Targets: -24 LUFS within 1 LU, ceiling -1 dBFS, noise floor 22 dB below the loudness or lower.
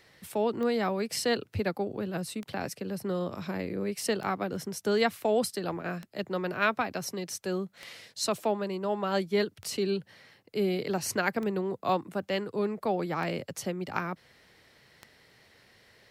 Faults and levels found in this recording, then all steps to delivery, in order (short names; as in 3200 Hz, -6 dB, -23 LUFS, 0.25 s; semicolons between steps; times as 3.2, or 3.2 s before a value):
clicks 9; loudness -31.5 LUFS; peak -12.5 dBFS; loudness target -24.0 LUFS
-> de-click; gain +7.5 dB